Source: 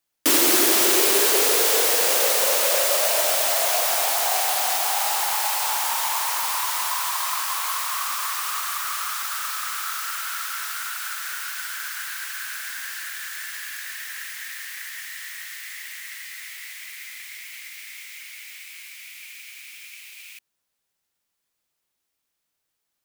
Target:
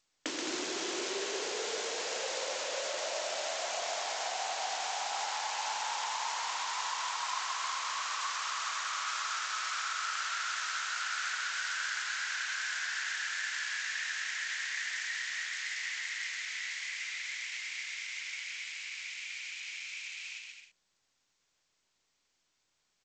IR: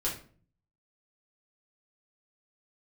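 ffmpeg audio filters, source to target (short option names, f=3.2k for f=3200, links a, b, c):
-filter_complex "[0:a]asettb=1/sr,asplit=3[a][b][c];[a]atrim=end=9.964[d];[b]atrim=start=9.96:end=12.23,asetpts=PTS-STARTPTS,afade=t=in:d=0.004:c=qsin,afade=t=out:st=2.266:d=0.004:c=qsin,highpass=300[e];[c]atrim=start=12.226[f];[d][e]acrossfade=d=0.004:c1=hsin:c2=qsin[g];[g][f]acrossfade=d=0.004:c1=qsin:c2=hsin,bandreject=f=1.2k:w=21,acompressor=threshold=-30dB:ratio=20,aecho=1:1:130|214.5|269.4|305.1|328.3:0.631|0.398|0.251|0.158|0.1,volume=-1dB" -ar 16000 -c:a g722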